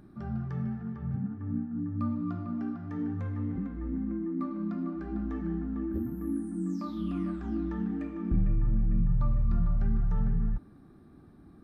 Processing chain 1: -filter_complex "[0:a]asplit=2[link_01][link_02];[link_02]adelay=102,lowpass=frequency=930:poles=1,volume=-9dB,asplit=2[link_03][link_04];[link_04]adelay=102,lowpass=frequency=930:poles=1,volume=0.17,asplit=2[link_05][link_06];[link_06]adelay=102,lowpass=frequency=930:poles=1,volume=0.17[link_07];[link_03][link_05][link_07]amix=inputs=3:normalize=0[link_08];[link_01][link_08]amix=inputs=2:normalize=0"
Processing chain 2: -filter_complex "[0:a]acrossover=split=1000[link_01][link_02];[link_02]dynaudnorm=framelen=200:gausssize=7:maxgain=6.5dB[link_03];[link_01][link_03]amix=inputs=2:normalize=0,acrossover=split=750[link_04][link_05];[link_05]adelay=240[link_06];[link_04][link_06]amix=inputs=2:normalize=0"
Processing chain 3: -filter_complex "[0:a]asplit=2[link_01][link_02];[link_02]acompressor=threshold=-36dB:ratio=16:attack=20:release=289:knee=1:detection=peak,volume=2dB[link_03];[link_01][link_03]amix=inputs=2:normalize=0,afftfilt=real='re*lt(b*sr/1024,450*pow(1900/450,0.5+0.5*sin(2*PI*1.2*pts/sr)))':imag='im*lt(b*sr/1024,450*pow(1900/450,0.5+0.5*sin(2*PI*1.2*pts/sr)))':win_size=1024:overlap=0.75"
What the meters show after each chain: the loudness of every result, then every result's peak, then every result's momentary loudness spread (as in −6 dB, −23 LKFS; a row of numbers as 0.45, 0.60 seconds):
−32.5, −32.5, −29.5 LKFS; −16.5, −17.0, −15.5 dBFS; 6, 6, 4 LU